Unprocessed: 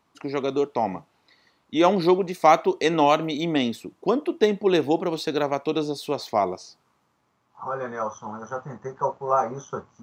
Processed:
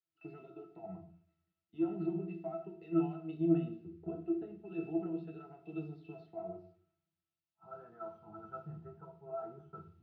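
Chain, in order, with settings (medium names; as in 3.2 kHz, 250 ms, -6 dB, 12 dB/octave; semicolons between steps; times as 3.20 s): treble shelf 2.1 kHz +10 dB; 2.30–4.82 s: transient shaper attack +10 dB, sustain -11 dB; peak limiter -17 dBFS, peak gain reduction 23.5 dB; compression, threshold -29 dBFS, peak gain reduction 8 dB; pitch-class resonator E, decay 0.14 s; added noise blue -69 dBFS; distance through air 350 m; reverberation RT60 0.70 s, pre-delay 6 ms, DRR 3.5 dB; three bands expanded up and down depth 70%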